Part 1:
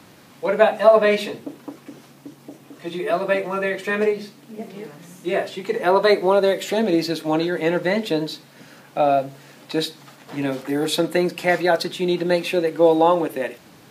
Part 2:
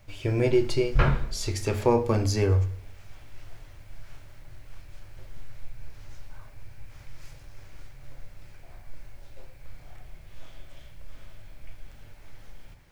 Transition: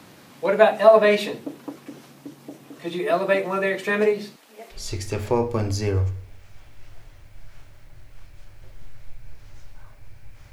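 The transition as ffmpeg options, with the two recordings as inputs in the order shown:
ffmpeg -i cue0.wav -i cue1.wav -filter_complex "[0:a]asettb=1/sr,asplit=3[link_01][link_02][link_03];[link_01]atrim=end=4.364[link_04];[link_02]atrim=start=4.36:end=4.84,asetpts=PTS-STARTPTS,afade=type=in:duration=0.004:curve=qsin,afade=type=out:start_time=0.476:duration=0.004:curve=qsin,highpass=680[link_05];[link_03]atrim=start=4.836[link_06];[link_04][link_05]acrossfade=duration=0.004:curve1=hsin:curve2=qsin[link_07];[link_07][link_06]acrossfade=duration=0.004:curve1=qsin:curve2=hsin,apad=whole_dur=10.52,atrim=end=10.52,atrim=end=4.84,asetpts=PTS-STARTPTS[link_08];[1:a]atrim=start=1.25:end=7.07,asetpts=PTS-STARTPTS[link_09];[link_08][link_09]acrossfade=duration=0.14:curve1=tri:curve2=tri" out.wav

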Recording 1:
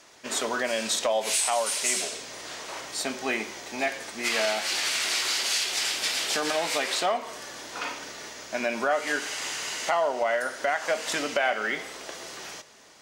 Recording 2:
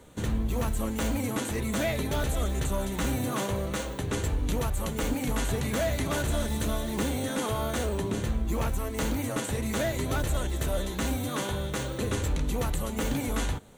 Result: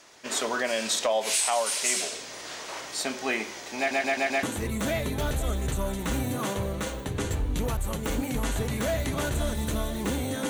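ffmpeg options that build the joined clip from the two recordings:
ffmpeg -i cue0.wav -i cue1.wav -filter_complex "[0:a]apad=whole_dur=10.49,atrim=end=10.49,asplit=5[link_01][link_02][link_03][link_04][link_05];[link_01]atrim=end=3.912[link_06];[link_02]atrim=start=3.778:end=3.912[link_07];[link_03]atrim=start=3.778:end=3.912[link_08];[link_04]atrim=start=3.778:end=3.912[link_09];[link_05]atrim=start=3.778:end=3.912[link_10];[1:a]atrim=start=1.358:end=7.42[link_11];[link_06][link_07]acrossfade=duration=0.004:curve1=hsin:curve2=hsin[link_12];[link_12][link_08]acrossfade=duration=0.004:curve1=hsin:curve2=hsin[link_13];[link_13][link_09]acrossfade=duration=0.004:curve1=hsin:curve2=hsin[link_14];[link_14][link_10]acrossfade=duration=0.004:curve1=hsin:curve2=hsin[link_15];[link_15][link_11]acrossfade=duration=0.004:curve1=hsin:curve2=hsin" out.wav

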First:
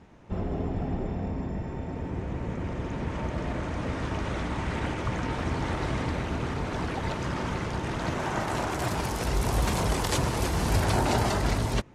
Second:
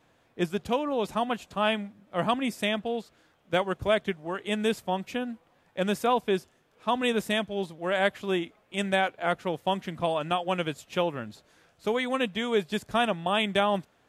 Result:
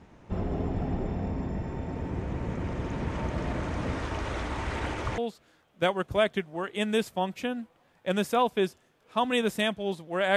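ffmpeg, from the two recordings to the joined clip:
ffmpeg -i cue0.wav -i cue1.wav -filter_complex "[0:a]asettb=1/sr,asplit=3[link_01][link_02][link_03];[link_01]atrim=end=3.994[link_04];[link_02]atrim=start=3.99:end=5.18,asetpts=PTS-STARTPTS,afade=type=in:duration=0.004:curve=qsin,afade=type=out:start_time=1.186:duration=0.004:curve=qsin,equalizer=frequency=170:width_type=o:width=1.1:gain=-8.5[link_05];[link_03]atrim=start=5.176[link_06];[link_04][link_05]acrossfade=duration=0.004:curve1=hsin:curve2=qsin[link_07];[link_07][link_06]acrossfade=duration=0.004:curve1=qsin:curve2=hsin,apad=whole_dur=10.36,atrim=end=10.36,atrim=end=5.182[link_08];[1:a]atrim=start=2.888:end=8.07[link_09];[link_08][link_09]acrossfade=duration=0.004:curve1=hsin:curve2=hsin" out.wav

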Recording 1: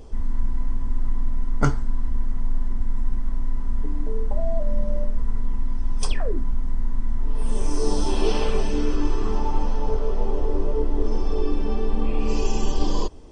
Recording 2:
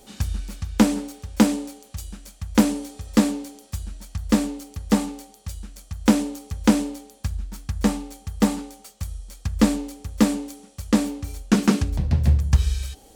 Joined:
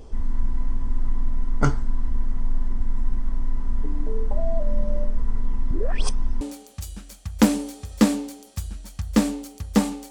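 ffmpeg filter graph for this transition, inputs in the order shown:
ffmpeg -i cue0.wav -i cue1.wav -filter_complex "[0:a]apad=whole_dur=10.1,atrim=end=10.1,asplit=2[link_01][link_02];[link_01]atrim=end=5.712[link_03];[link_02]atrim=start=5.708:end=6.412,asetpts=PTS-STARTPTS,areverse[link_04];[1:a]atrim=start=1.568:end=5.26[link_05];[link_03][link_04]acrossfade=duration=0.004:curve1=hsin:curve2=hsin[link_06];[link_06][link_05]acrossfade=duration=0.004:curve1=hsin:curve2=hsin" out.wav

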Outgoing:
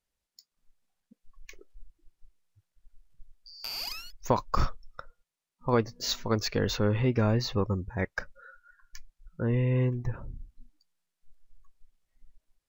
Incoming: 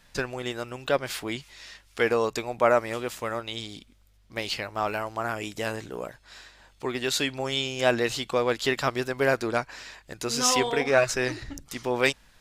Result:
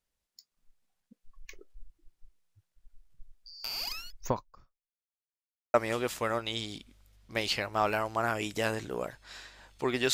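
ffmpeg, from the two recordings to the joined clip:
ffmpeg -i cue0.wav -i cue1.wav -filter_complex "[0:a]apad=whole_dur=10.13,atrim=end=10.13,asplit=2[link_01][link_02];[link_01]atrim=end=5.22,asetpts=PTS-STARTPTS,afade=type=out:start_time=4.27:duration=0.95:curve=exp[link_03];[link_02]atrim=start=5.22:end=5.74,asetpts=PTS-STARTPTS,volume=0[link_04];[1:a]atrim=start=2.75:end=7.14,asetpts=PTS-STARTPTS,afade=type=in:duration=0.004:curve=hsin[link_05];[link_03][link_04][link_05]concat=n=3:v=0:a=1" out.wav

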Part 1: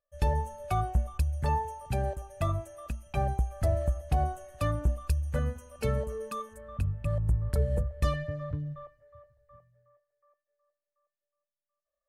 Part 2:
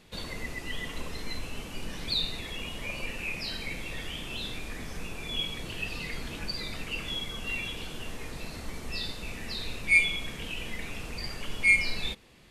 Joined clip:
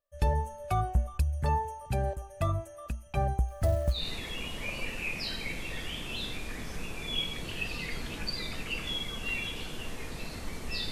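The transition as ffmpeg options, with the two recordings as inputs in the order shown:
ffmpeg -i cue0.wav -i cue1.wav -filter_complex "[0:a]asettb=1/sr,asplit=3[link_01][link_02][link_03];[link_01]atrim=end=3.484[link_04];[link_02]atrim=start=3.48:end=4.08,asetpts=PTS-STARTPTS,afade=type=in:duration=0.004:curve=qsin,afade=type=out:start_time=0.596:duration=0.004:curve=qsin,acrusher=bits=7:mode=log:mix=0:aa=0.000001[link_05];[link_03]atrim=start=4.076[link_06];[link_04][link_05]acrossfade=duration=0.004:curve1=hsin:curve2=qsin[link_07];[link_07][link_06]acrossfade=duration=0.004:curve1=qsin:curve2=hsin,apad=whole_dur=10.91,atrim=end=10.91,atrim=end=4.08,asetpts=PTS-STARTPTS[link_08];[1:a]atrim=start=2.11:end=9.12,asetpts=PTS-STARTPTS[link_09];[link_08][link_09]acrossfade=duration=0.18:curve1=tri:curve2=tri" out.wav

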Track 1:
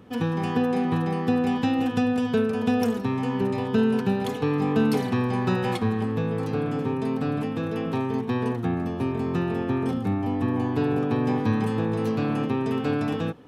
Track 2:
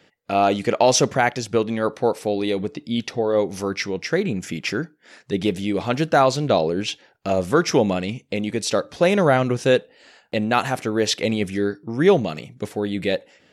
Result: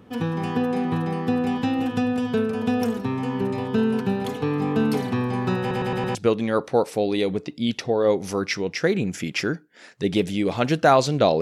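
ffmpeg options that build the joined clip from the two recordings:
ffmpeg -i cue0.wav -i cue1.wav -filter_complex "[0:a]apad=whole_dur=11.41,atrim=end=11.41,asplit=5[link_01][link_02][link_03][link_04][link_05];[link_01]atrim=end=5.712[link_06];[link_02]atrim=start=5.598:end=5.712[link_07];[link_03]atrim=start=5.598:end=5.712[link_08];[link_04]atrim=start=5.598:end=5.712[link_09];[link_05]atrim=start=5.598:end=5.712[link_10];[1:a]atrim=start=1.438:end=6.7[link_11];[link_06][link_07]acrossfade=duration=0.004:curve1=hsin:curve2=hsin[link_12];[link_12][link_08]acrossfade=duration=0.004:curve1=hsin:curve2=hsin[link_13];[link_13][link_09]acrossfade=duration=0.004:curve1=hsin:curve2=hsin[link_14];[link_14][link_10]acrossfade=duration=0.004:curve1=hsin:curve2=hsin[link_15];[link_15][link_11]acrossfade=duration=0.004:curve1=hsin:curve2=hsin" out.wav

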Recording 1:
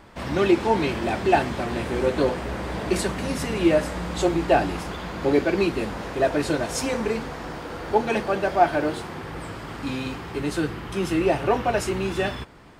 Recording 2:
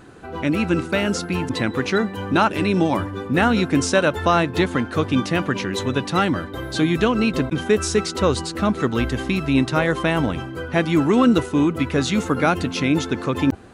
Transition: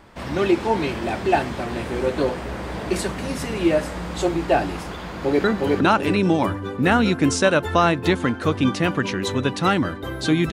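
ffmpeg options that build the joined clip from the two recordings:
ffmpeg -i cue0.wav -i cue1.wav -filter_complex "[0:a]apad=whole_dur=10.52,atrim=end=10.52,atrim=end=5.442[link_01];[1:a]atrim=start=1.948:end=7.03[link_02];[link_01][link_02]acrossfade=duration=0.004:curve1=hsin:curve2=hsin,asplit=2[link_03][link_04];[link_04]afade=type=in:start_time=5.04:duration=0.01,afade=type=out:start_time=5.44:duration=0.01,aecho=0:1:360|720|1080|1440|1800:0.841395|0.336558|0.134623|0.0538493|0.0215397[link_05];[link_03][link_05]amix=inputs=2:normalize=0" out.wav

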